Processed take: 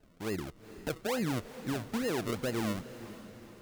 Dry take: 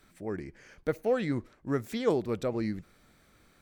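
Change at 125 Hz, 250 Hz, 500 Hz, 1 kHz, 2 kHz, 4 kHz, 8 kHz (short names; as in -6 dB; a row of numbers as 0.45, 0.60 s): -1.0, -2.0, -6.0, -0.5, +2.0, +4.5, +9.5 dB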